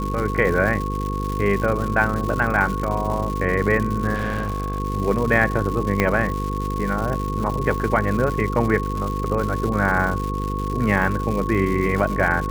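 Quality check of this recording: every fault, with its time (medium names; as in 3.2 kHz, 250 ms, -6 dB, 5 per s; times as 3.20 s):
buzz 50 Hz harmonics 10 -26 dBFS
crackle 240 per s -26 dBFS
whine 1.1 kHz -28 dBFS
4.14–4.80 s: clipped -20.5 dBFS
6.00 s: pop -5 dBFS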